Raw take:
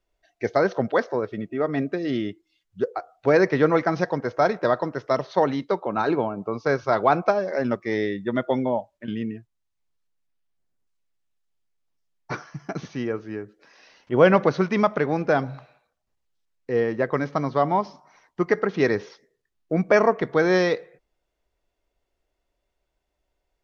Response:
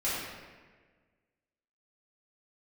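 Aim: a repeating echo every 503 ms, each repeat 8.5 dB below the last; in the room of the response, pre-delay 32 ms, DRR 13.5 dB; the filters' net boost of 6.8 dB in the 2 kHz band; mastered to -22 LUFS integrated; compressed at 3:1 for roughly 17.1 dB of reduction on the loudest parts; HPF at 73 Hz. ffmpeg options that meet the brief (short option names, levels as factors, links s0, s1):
-filter_complex "[0:a]highpass=73,equalizer=f=2000:t=o:g=8.5,acompressor=threshold=0.0224:ratio=3,aecho=1:1:503|1006|1509|2012:0.376|0.143|0.0543|0.0206,asplit=2[s0][s1];[1:a]atrim=start_sample=2205,adelay=32[s2];[s1][s2]afir=irnorm=-1:irlink=0,volume=0.0794[s3];[s0][s3]amix=inputs=2:normalize=0,volume=3.98"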